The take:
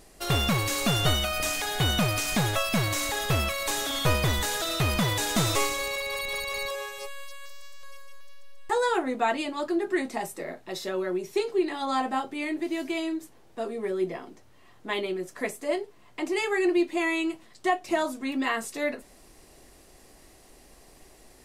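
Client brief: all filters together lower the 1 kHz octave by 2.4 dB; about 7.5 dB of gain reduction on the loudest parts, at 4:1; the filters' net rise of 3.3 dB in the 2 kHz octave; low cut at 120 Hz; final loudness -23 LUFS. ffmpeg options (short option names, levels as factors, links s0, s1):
-af "highpass=120,equalizer=f=1000:t=o:g=-4.5,equalizer=f=2000:t=o:g=5,acompressor=threshold=0.0355:ratio=4,volume=2.82"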